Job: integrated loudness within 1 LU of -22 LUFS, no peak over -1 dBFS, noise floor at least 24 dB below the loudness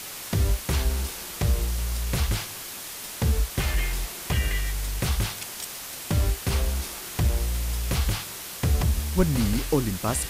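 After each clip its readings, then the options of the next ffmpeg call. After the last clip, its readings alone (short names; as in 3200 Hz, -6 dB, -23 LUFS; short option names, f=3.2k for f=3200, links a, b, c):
noise floor -38 dBFS; noise floor target -51 dBFS; loudness -27.0 LUFS; peak -9.0 dBFS; loudness target -22.0 LUFS
-> -af "afftdn=nr=13:nf=-38"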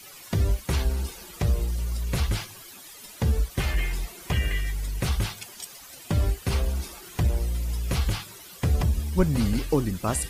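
noise floor -46 dBFS; noise floor target -52 dBFS
-> -af "afftdn=nr=6:nf=-46"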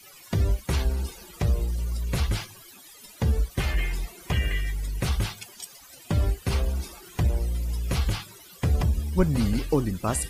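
noise floor -49 dBFS; noise floor target -52 dBFS
-> -af "afftdn=nr=6:nf=-49"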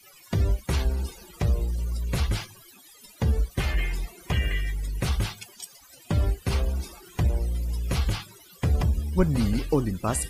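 noise floor -52 dBFS; loudness -28.0 LUFS; peak -9.5 dBFS; loudness target -22.0 LUFS
-> -af "volume=6dB"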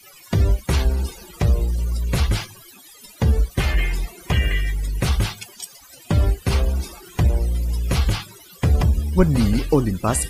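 loudness -22.0 LUFS; peak -3.5 dBFS; noise floor -46 dBFS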